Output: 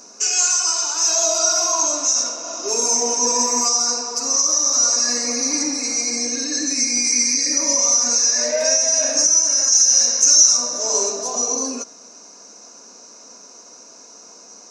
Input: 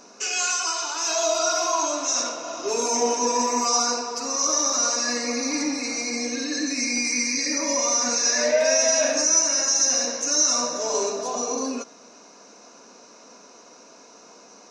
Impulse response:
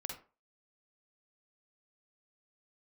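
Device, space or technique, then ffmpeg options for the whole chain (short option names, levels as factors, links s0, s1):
over-bright horn tweeter: -filter_complex "[0:a]highshelf=f=4500:t=q:w=1.5:g=8,alimiter=limit=0.473:level=0:latency=1:release=383,asettb=1/sr,asplit=3[s0][s1][s2];[s0]atrim=end=9.724[s3];[s1]atrim=start=9.72:end=10.57,asetpts=PTS-STARTPTS,afade=t=in:d=0.004:c=qsin,afade=t=out:st=0.846:d=0.004:c=qsin,tiltshelf=f=1100:g=-4.5[s4];[s2]atrim=start=10.566[s5];[s3][s4]acrossfade=d=0.004:c1=hsin:c2=qsin[s6];[s6][s5]acrossfade=d=0.004:c1=qsin:c2=hsin"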